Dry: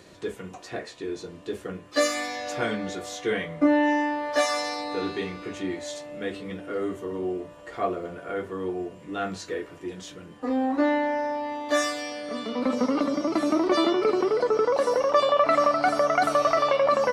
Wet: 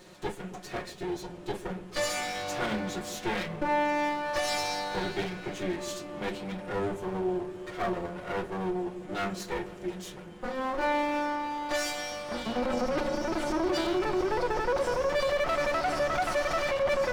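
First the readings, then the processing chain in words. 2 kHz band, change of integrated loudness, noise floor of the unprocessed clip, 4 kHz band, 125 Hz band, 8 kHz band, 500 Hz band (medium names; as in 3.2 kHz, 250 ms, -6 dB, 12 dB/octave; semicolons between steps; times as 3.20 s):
-2.0 dB, -5.0 dB, -47 dBFS, -2.5 dB, +2.0 dB, -2.0 dB, -5.0 dB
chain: comb filter that takes the minimum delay 5.5 ms; peak limiter -20.5 dBFS, peak gain reduction 10.5 dB; on a send: feedback echo behind a low-pass 136 ms, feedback 79%, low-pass 440 Hz, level -12 dB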